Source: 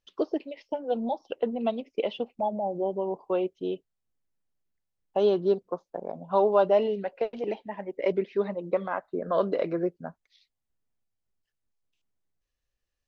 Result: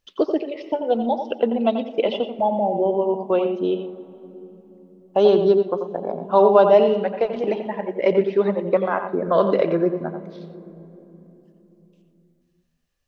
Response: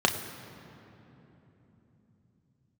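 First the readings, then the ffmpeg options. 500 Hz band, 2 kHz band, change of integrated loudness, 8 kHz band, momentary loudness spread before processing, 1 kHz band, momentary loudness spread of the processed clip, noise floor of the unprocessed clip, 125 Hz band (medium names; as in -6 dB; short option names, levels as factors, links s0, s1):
+8.5 dB, +8.0 dB, +8.5 dB, no reading, 12 LU, +8.5 dB, 13 LU, -83 dBFS, +9.0 dB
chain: -filter_complex "[0:a]asplit=2[s0][s1];[1:a]atrim=start_sample=2205,adelay=87[s2];[s1][s2]afir=irnorm=-1:irlink=0,volume=0.0841[s3];[s0][s3]amix=inputs=2:normalize=0,volume=2.37"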